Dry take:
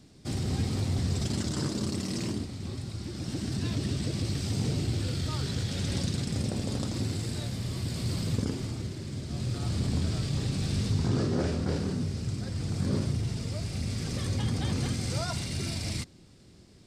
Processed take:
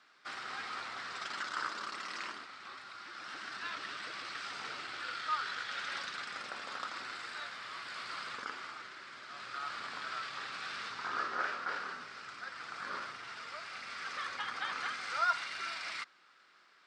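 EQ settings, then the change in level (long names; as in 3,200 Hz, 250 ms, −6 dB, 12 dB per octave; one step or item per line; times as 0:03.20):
four-pole ladder band-pass 1,500 Hz, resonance 60%
+15.0 dB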